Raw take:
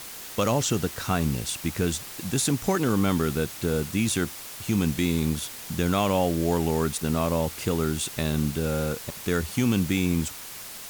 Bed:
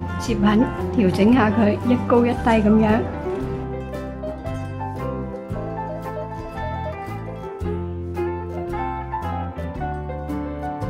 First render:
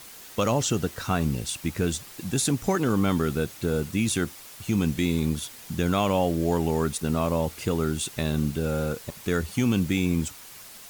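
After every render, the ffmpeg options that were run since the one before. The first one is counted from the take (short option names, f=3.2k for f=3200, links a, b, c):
-af "afftdn=nr=6:nf=-40"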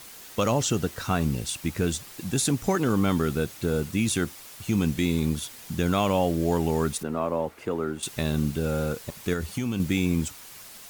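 -filter_complex "[0:a]asettb=1/sr,asplit=3[a][b][c];[a]atrim=end=7.034[d];[b]atrim=start=7.03:end=8.03,asetpts=PTS-STARTPTS,afade=t=in:d=0.004:c=qsin,afade=t=out:st=0.996:d=0.004:c=qsin,acrossover=split=240 2100:gain=0.224 1 0.178[e][f][g];[e][f][g]amix=inputs=3:normalize=0[h];[c]atrim=start=8.026[i];[d][h]acrossfade=d=0.004:c1=hsin:c2=qsin[j];[j][i]acrossfade=d=0.004:c1=qsin:c2=hsin,asettb=1/sr,asplit=3[k][l][m];[k]atrim=end=9.334[n];[l]atrim=start=9.33:end=9.8,asetpts=PTS-STARTPTS,afade=t=in:d=0.004:c=qsin,afade=t=out:st=0.466:d=0.004:c=qsin,acompressor=threshold=-24dB:ratio=4:attack=3.2:release=140:knee=1:detection=peak[o];[m]atrim=start=9.796[p];[n][o]acrossfade=d=0.004:c1=hsin:c2=qsin[q];[q][p]acrossfade=d=0.004:c1=qsin:c2=hsin"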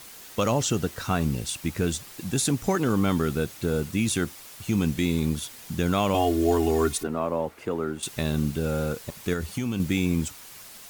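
-filter_complex "[0:a]asettb=1/sr,asplit=3[a][b][c];[a]atrim=end=6.144[d];[b]atrim=start=6.14:end=7.07,asetpts=PTS-STARTPTS,afade=t=in:d=0.004:c=qsin,afade=t=out:st=0.926:d=0.004:c=qsin,aecho=1:1:2.8:0.94,atrim=end_sample=41013[e];[c]atrim=start=7.066[f];[d][e]acrossfade=d=0.004:c1=hsin:c2=qsin[g];[g][f]acrossfade=d=0.004:c1=qsin:c2=hsin"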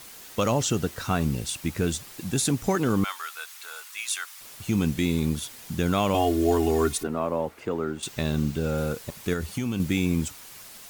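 -filter_complex "[0:a]asettb=1/sr,asplit=3[a][b][c];[a]atrim=end=3.044[d];[b]atrim=start=3.04:end=4.41,asetpts=PTS-STARTPTS,afade=t=in:d=0.004:c=qsin,afade=t=out:st=1.366:d=0.004:c=qsin,highpass=f=990:w=0.5412,highpass=f=990:w=1.3066[e];[c]atrim=start=4.406[f];[d][e]acrossfade=d=0.004:c1=hsin:c2=qsin[g];[g][f]acrossfade=d=0.004:c1=qsin:c2=hsin,asettb=1/sr,asplit=3[h][i][j];[h]atrim=end=7.604[k];[i]atrim=start=7.6:end=8.78,asetpts=PTS-STARTPTS,afade=t=in:d=0.004:c=qsin,afade=t=out:st=1.176:d=0.004:c=qsin,equalizer=f=11k:t=o:w=0.32:g=-11.5[l];[j]atrim=start=8.776[m];[k][l]acrossfade=d=0.004:c1=hsin:c2=qsin[n];[n][m]acrossfade=d=0.004:c1=qsin:c2=hsin"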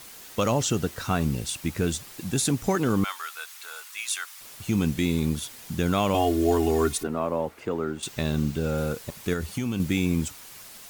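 -af anull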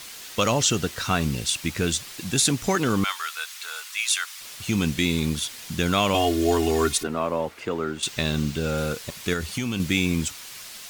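-af "equalizer=f=3.7k:t=o:w=2.9:g=8.5,bandreject=f=820:w=26"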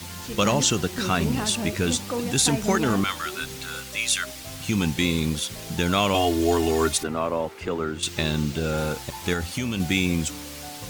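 -filter_complex "[1:a]volume=-13dB[a];[0:a][a]amix=inputs=2:normalize=0"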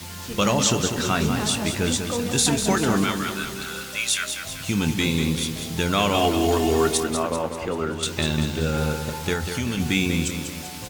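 -filter_complex "[0:a]asplit=2[a][b];[b]adelay=25,volume=-12dB[c];[a][c]amix=inputs=2:normalize=0,aecho=1:1:194|388|582|776|970|1164:0.422|0.215|0.11|0.0559|0.0285|0.0145"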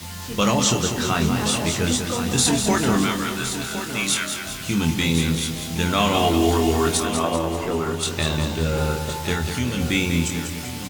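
-filter_complex "[0:a]asplit=2[a][b];[b]adelay=24,volume=-5dB[c];[a][c]amix=inputs=2:normalize=0,aecho=1:1:1065:0.316"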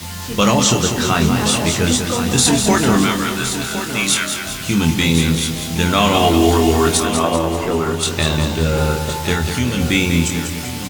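-af "volume=5.5dB,alimiter=limit=-2dB:level=0:latency=1"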